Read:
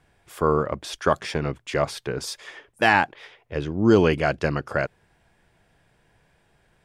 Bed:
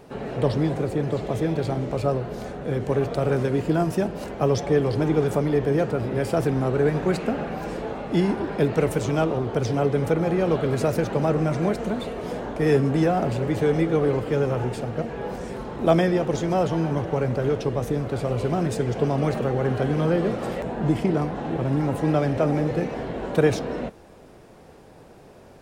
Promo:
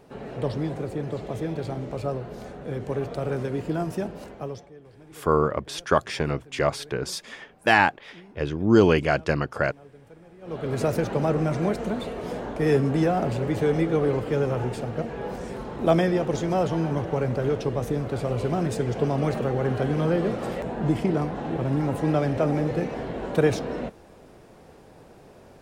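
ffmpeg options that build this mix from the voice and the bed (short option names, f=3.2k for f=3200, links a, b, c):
-filter_complex "[0:a]adelay=4850,volume=0dB[a];[1:a]volume=20.5dB,afade=t=out:st=4.1:d=0.61:silence=0.0794328,afade=t=in:st=10.41:d=0.42:silence=0.0501187[b];[a][b]amix=inputs=2:normalize=0"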